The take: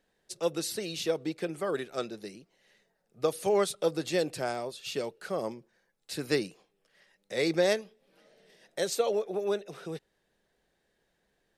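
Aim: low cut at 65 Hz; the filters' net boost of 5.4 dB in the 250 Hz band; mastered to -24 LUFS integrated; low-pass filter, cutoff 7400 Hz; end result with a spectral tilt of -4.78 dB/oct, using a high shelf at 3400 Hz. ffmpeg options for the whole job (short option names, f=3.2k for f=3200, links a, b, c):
-af "highpass=65,lowpass=7.4k,equalizer=f=250:t=o:g=8.5,highshelf=f=3.4k:g=-3.5,volume=5.5dB"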